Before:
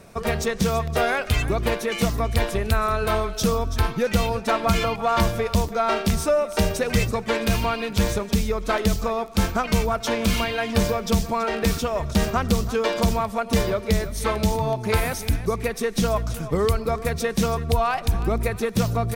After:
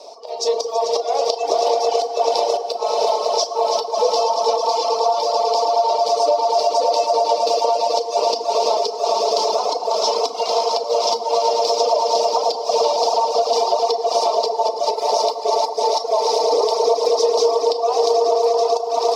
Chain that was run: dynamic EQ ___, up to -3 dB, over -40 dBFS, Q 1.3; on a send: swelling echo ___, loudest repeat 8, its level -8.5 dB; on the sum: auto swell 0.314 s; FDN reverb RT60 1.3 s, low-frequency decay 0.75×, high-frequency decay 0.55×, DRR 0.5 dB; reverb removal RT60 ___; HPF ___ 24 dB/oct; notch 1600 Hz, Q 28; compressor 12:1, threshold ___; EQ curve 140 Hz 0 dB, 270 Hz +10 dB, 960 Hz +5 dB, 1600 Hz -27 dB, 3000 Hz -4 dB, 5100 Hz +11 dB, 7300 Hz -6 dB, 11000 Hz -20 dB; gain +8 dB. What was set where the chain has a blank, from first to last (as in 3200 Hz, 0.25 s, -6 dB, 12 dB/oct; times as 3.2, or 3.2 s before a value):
3300 Hz, 0.109 s, 1 s, 580 Hz, -27 dBFS